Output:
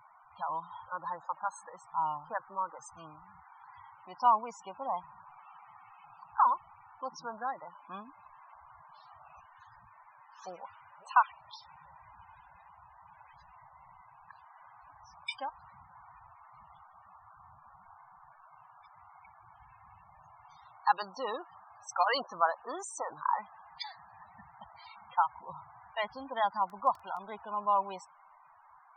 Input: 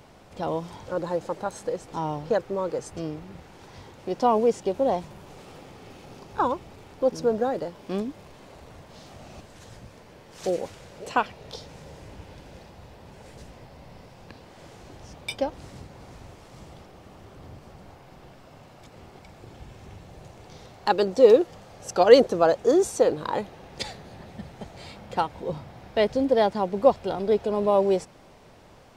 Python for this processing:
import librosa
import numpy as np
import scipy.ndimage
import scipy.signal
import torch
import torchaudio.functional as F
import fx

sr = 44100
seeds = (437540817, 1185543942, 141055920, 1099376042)

y = fx.low_shelf_res(x, sr, hz=670.0, db=-14.0, q=3.0)
y = fx.spec_topn(y, sr, count=32)
y = fx.dmg_crackle(y, sr, seeds[0], per_s=19.0, level_db=-35.0, at=(26.66, 27.21), fade=0.02)
y = F.gain(torch.from_numpy(y), -5.0).numpy()